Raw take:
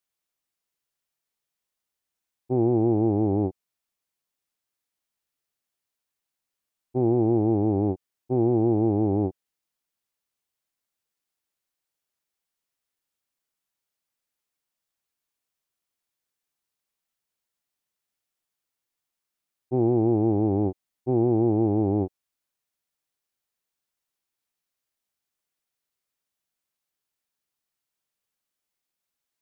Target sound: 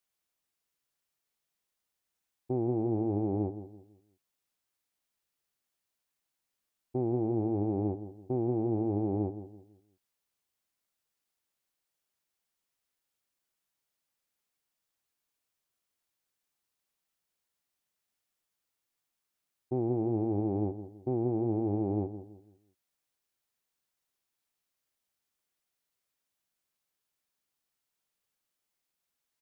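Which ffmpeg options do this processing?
-filter_complex "[0:a]alimiter=limit=-21.5dB:level=0:latency=1:release=211,asplit=2[a][b];[b]adelay=167,lowpass=f=1.1k:p=1,volume=-11.5dB,asplit=2[c][d];[d]adelay=167,lowpass=f=1.1k:p=1,volume=0.35,asplit=2[e][f];[f]adelay=167,lowpass=f=1.1k:p=1,volume=0.35,asplit=2[g][h];[h]adelay=167,lowpass=f=1.1k:p=1,volume=0.35[i];[c][e][g][i]amix=inputs=4:normalize=0[j];[a][j]amix=inputs=2:normalize=0"

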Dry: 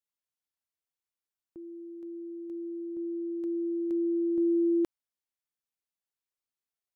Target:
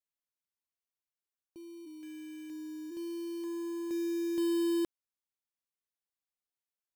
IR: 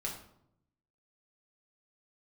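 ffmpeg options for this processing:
-filter_complex "[0:a]acrusher=bits=3:mode=log:mix=0:aa=0.000001,asplit=3[a][b][c];[a]afade=t=out:st=1.85:d=0.02[d];[b]afreqshift=-29,afade=t=in:st=1.85:d=0.02,afade=t=out:st=2.9:d=0.02[e];[c]afade=t=in:st=2.9:d=0.02[f];[d][e][f]amix=inputs=3:normalize=0,volume=-5dB"

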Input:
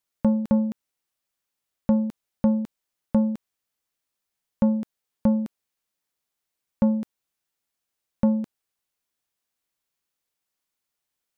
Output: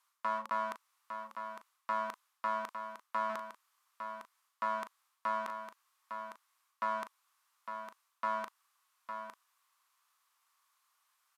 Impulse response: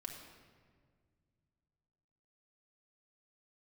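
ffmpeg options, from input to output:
-filter_complex "[0:a]areverse,acompressor=threshold=-25dB:ratio=16,areverse,volume=29.5dB,asoftclip=hard,volume=-29.5dB,highpass=f=1.1k:t=q:w=5.8,asplit=2[a][b];[b]adelay=38,volume=-10.5dB[c];[a][c]amix=inputs=2:normalize=0,asplit=2[d][e];[e]aecho=0:1:856:0.398[f];[d][f]amix=inputs=2:normalize=0,volume=5.5dB" -ar 32000 -c:a libvorbis -b:a 128k

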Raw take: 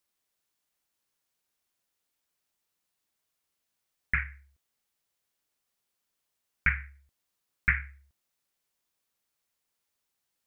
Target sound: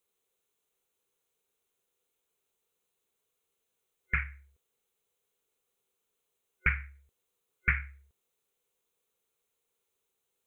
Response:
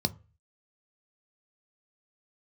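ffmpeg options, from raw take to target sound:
-af "superequalizer=7b=3.55:11b=0.631:14b=0.355"

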